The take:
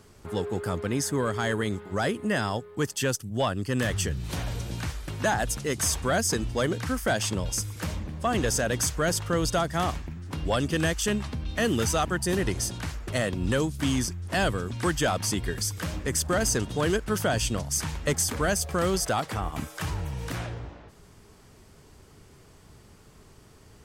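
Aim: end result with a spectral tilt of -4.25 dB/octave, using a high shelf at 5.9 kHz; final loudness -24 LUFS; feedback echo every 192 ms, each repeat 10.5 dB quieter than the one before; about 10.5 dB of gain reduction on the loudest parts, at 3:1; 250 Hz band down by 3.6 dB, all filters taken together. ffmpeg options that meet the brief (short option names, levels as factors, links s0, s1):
-af "equalizer=f=250:t=o:g=-5,highshelf=f=5900:g=-7,acompressor=threshold=0.0141:ratio=3,aecho=1:1:192|384|576:0.299|0.0896|0.0269,volume=5.01"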